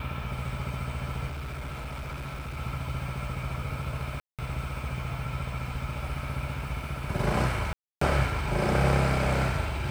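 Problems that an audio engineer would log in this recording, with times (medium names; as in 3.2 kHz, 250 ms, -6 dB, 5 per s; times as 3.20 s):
1.27–2.58 s: clipped -32.5 dBFS
4.20–4.39 s: dropout 187 ms
7.73–8.01 s: dropout 284 ms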